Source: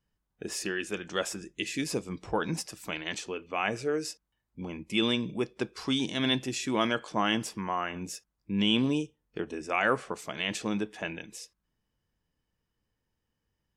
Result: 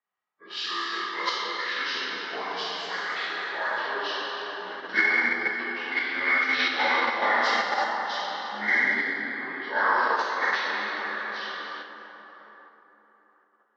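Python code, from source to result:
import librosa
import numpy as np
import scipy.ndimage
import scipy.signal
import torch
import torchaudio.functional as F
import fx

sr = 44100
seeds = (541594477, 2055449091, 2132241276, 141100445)

p1 = fx.partial_stretch(x, sr, pct=82)
p2 = scipy.signal.sosfilt(scipy.signal.butter(2, 850.0, 'highpass', fs=sr, output='sos'), p1)
p3 = fx.high_shelf(p2, sr, hz=6600.0, db=12.0)
p4 = p3 + fx.echo_multitap(p3, sr, ms=(312, 316, 625), db=(-12.5, -14.0, -15.5), dry=0)
p5 = fx.rev_plate(p4, sr, seeds[0], rt60_s=4.2, hf_ratio=0.5, predelay_ms=0, drr_db=-9.5)
p6 = fx.transient(p5, sr, attack_db=8, sustain_db=4, at=(4.79, 5.63))
p7 = fx.level_steps(p6, sr, step_db=13)
p8 = p6 + F.gain(torch.from_numpy(p7), -2.0).numpy()
p9 = fx.env_lowpass(p8, sr, base_hz=1800.0, full_db=-17.0)
y = F.gain(torch.from_numpy(p9), -3.0).numpy()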